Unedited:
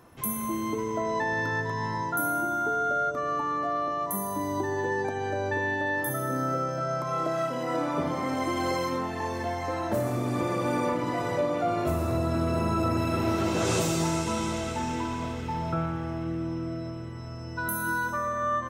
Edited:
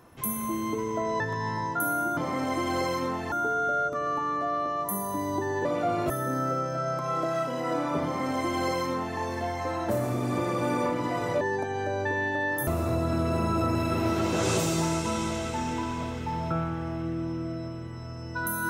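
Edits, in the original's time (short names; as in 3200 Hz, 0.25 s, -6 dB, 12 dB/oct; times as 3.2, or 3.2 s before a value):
1.2–1.57 cut
4.87–6.13 swap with 11.44–11.89
8.07–9.22 copy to 2.54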